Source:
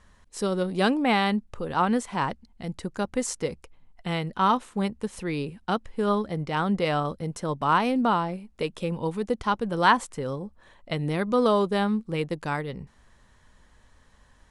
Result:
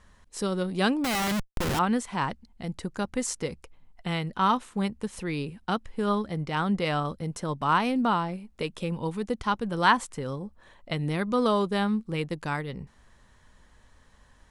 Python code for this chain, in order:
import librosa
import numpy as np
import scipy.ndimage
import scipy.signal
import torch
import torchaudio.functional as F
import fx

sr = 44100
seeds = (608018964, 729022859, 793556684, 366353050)

y = fx.schmitt(x, sr, flips_db=-36.5, at=(1.04, 1.79))
y = fx.dynamic_eq(y, sr, hz=530.0, q=0.86, threshold_db=-36.0, ratio=4.0, max_db=-4)